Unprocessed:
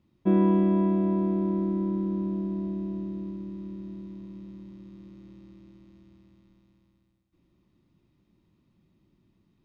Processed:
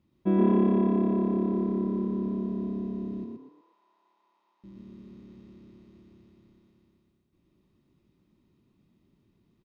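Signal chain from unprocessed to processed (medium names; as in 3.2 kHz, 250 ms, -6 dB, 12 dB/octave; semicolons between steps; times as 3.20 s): 3.24–4.64 s: ladder high-pass 810 Hz, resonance 75%; frequency-shifting echo 121 ms, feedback 33%, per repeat +34 Hz, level -3 dB; trim -2.5 dB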